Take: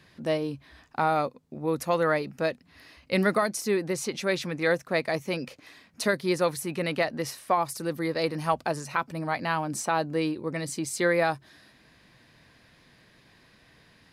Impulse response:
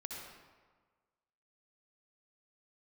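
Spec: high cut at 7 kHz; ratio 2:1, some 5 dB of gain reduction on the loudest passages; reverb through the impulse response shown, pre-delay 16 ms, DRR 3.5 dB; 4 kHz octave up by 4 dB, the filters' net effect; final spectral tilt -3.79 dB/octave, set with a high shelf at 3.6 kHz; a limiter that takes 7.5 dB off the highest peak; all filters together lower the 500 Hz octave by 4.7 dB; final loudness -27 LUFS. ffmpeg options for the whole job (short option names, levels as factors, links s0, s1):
-filter_complex "[0:a]lowpass=7000,equalizer=f=500:t=o:g=-6,highshelf=f=3600:g=3.5,equalizer=f=4000:t=o:g=3,acompressor=threshold=0.0316:ratio=2,alimiter=limit=0.0794:level=0:latency=1,asplit=2[s0][s1];[1:a]atrim=start_sample=2205,adelay=16[s2];[s1][s2]afir=irnorm=-1:irlink=0,volume=0.794[s3];[s0][s3]amix=inputs=2:normalize=0,volume=2"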